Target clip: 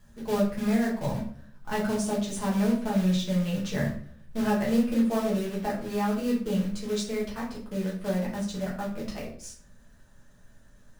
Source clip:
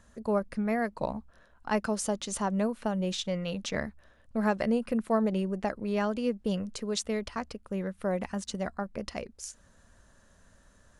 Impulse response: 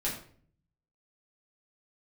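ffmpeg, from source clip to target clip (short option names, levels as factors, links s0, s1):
-filter_complex "[0:a]asetnsamples=n=441:p=0,asendcmd='4.42 equalizer g 4.5',equalizer=f=110:w=1.2:g=11.5,acrusher=bits=3:mode=log:mix=0:aa=0.000001[s0];[1:a]atrim=start_sample=2205[s1];[s0][s1]afir=irnorm=-1:irlink=0,volume=0.501"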